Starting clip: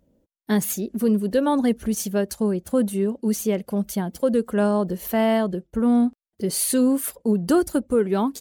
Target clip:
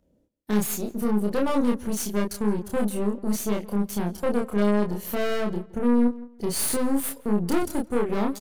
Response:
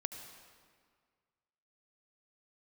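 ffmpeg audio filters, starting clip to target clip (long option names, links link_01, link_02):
-filter_complex "[0:a]aresample=32000,aresample=44100,aeval=exprs='(tanh(12.6*val(0)+0.75)-tanh(0.75))/12.6':channel_layout=same,asplit=2[link_01][link_02];[link_02]adelay=29,volume=-2dB[link_03];[link_01][link_03]amix=inputs=2:normalize=0,asplit=2[link_04][link_05];[link_05]adelay=167,lowpass=frequency=3000:poles=1,volume=-19dB,asplit=2[link_06][link_07];[link_07]adelay=167,lowpass=frequency=3000:poles=1,volume=0.25[link_08];[link_04][link_06][link_08]amix=inputs=3:normalize=0,acrossover=split=640|3300[link_09][link_10][link_11];[link_11]acrusher=bits=3:mode=log:mix=0:aa=0.000001[link_12];[link_09][link_10][link_12]amix=inputs=3:normalize=0"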